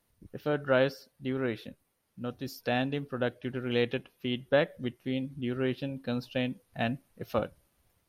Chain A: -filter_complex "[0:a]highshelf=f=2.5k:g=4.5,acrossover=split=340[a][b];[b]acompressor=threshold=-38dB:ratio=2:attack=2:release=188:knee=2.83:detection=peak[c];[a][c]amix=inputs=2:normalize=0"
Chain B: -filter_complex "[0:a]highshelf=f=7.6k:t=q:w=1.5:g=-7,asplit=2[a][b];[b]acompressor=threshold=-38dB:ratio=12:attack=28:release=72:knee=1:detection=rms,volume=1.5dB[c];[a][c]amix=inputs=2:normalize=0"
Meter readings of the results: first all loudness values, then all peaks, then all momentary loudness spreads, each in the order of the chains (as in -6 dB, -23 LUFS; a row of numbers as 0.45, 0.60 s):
-36.0, -29.5 LUFS; -19.0, -11.5 dBFS; 8, 10 LU